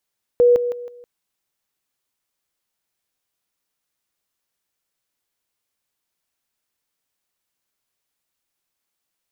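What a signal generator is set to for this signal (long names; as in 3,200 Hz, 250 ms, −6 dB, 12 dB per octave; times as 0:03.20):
level staircase 485 Hz −9.5 dBFS, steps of −10 dB, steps 4, 0.16 s 0.00 s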